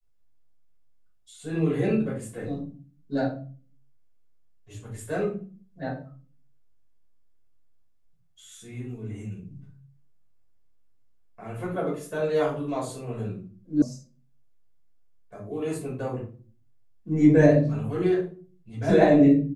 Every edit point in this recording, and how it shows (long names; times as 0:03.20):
0:13.82: cut off before it has died away